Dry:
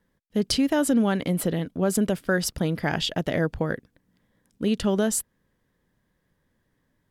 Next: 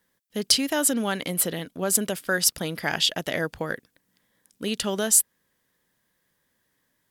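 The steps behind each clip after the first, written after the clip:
spectral tilt +3 dB per octave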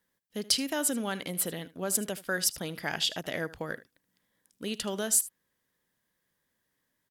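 single-tap delay 77 ms −18 dB
level −6.5 dB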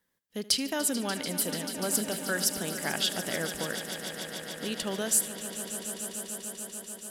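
echo that builds up and dies away 146 ms, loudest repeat 5, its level −13.5 dB

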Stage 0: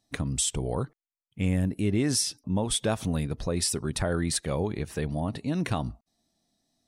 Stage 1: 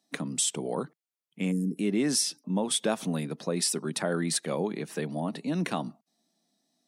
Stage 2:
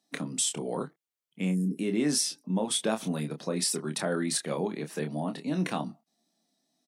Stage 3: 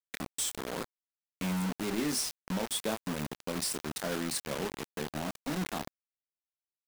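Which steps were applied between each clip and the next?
gain on a spectral selection 0:01.51–0:01.77, 490–4,800 Hz −29 dB; Butterworth high-pass 160 Hz 48 dB per octave
double-tracking delay 27 ms −7 dB; level −1.5 dB
bit reduction 5 bits; level −5.5 dB

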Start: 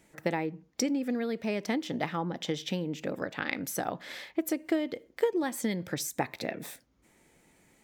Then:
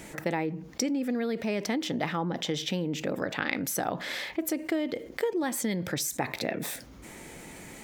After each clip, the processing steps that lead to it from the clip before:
envelope flattener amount 50%
level −3 dB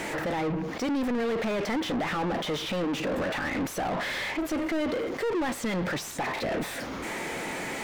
brickwall limiter −22 dBFS, peak gain reduction 10.5 dB
mid-hump overdrive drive 32 dB, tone 1,700 Hz, clips at −22 dBFS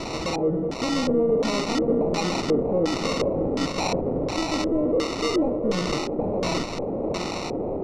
feedback delay with all-pass diffusion 640 ms, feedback 42%, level −4.5 dB
decimation without filtering 27×
auto-filter low-pass square 1.4 Hz 500–5,300 Hz
level +2 dB

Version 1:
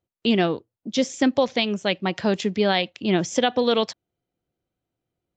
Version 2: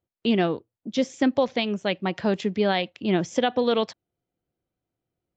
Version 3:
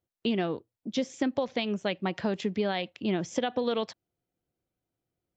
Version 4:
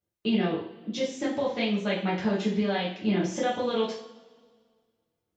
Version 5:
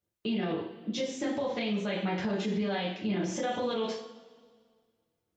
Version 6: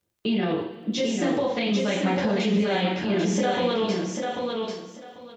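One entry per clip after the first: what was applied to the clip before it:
high-shelf EQ 4,500 Hz −10 dB; level −1.5 dB
downward compressor, threshold −22 dBFS, peak gain reduction 6.5 dB; level −2 dB
coupled-rooms reverb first 0.48 s, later 1.8 s, from −19 dB, DRR −8.5 dB; level −6.5 dB
brickwall limiter −23 dBFS, peak gain reduction 9 dB
surface crackle 34 per second −61 dBFS; on a send: repeating echo 793 ms, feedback 19%, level −4 dB; on the sum: level +6.5 dB

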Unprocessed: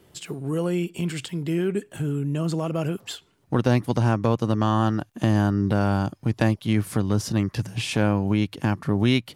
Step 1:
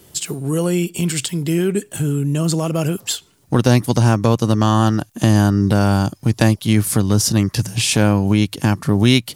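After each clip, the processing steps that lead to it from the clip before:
bass and treble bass +2 dB, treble +12 dB
level +5.5 dB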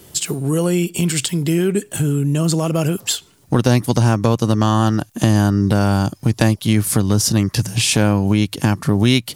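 downward compressor 1.5 to 1, threshold −21 dBFS, peak gain reduction 5 dB
level +3.5 dB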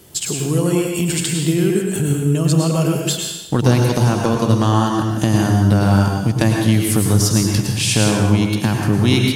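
dense smooth reverb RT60 0.96 s, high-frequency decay 0.95×, pre-delay 90 ms, DRR 0.5 dB
level −2 dB

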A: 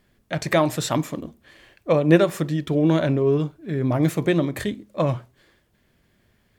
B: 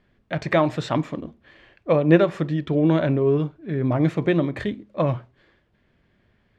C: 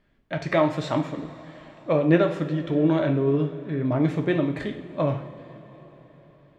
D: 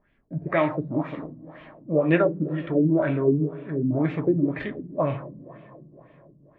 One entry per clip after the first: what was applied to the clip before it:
low-pass filter 3,200 Hz 12 dB per octave
coupled-rooms reverb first 0.49 s, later 4.9 s, from −18 dB, DRR 4 dB; level −3.5 dB
auto-filter low-pass sine 2 Hz 210–2,700 Hz; level −2.5 dB

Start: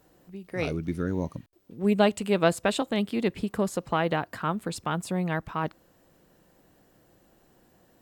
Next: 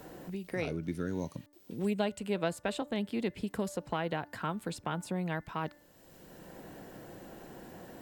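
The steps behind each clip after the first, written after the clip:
notch filter 1,200 Hz, Q 11
hum removal 293.4 Hz, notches 7
multiband upward and downward compressor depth 70%
level −7 dB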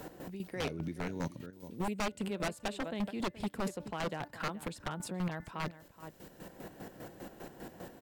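square-wave tremolo 5 Hz, depth 65%, duty 40%
slap from a distant wall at 73 metres, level −15 dB
wave folding −31 dBFS
level +3.5 dB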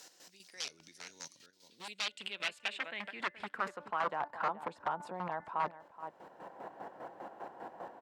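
band-pass filter sweep 5,600 Hz → 900 Hz, 0:01.33–0:04.39
level +10 dB

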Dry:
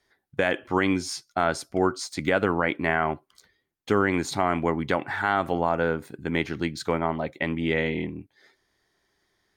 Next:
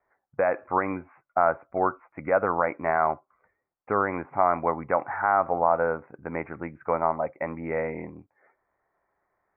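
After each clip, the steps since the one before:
Butterworth low-pass 2,400 Hz 96 dB per octave
flat-topped bell 820 Hz +11.5 dB
level −8 dB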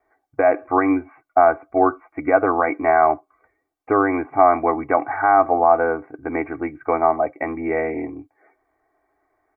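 comb filter 2.6 ms, depth 80%
hollow resonant body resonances 290/620/2,200 Hz, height 11 dB, ringing for 50 ms
level +2.5 dB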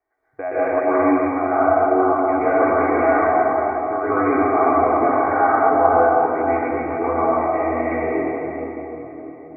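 convolution reverb RT60 4.3 s, pre-delay 119 ms, DRR −12.5 dB
level −11.5 dB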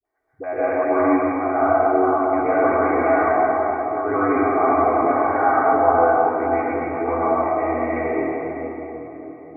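all-pass dispersion highs, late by 51 ms, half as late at 570 Hz
level −1 dB

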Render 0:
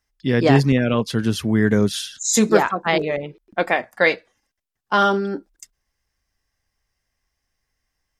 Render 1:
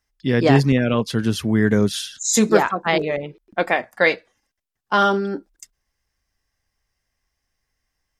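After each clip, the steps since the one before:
no processing that can be heard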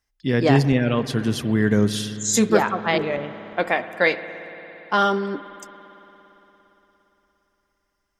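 convolution reverb RT60 3.9 s, pre-delay 57 ms, DRR 12 dB
level −2 dB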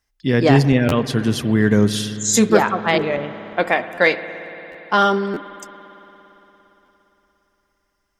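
in parallel at −6 dB: gain into a clipping stage and back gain 9 dB
on the sum: buffer that repeats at 0:00.88/0:03.94/0:04.71/0:05.33/0:06.85, samples 512, times 2

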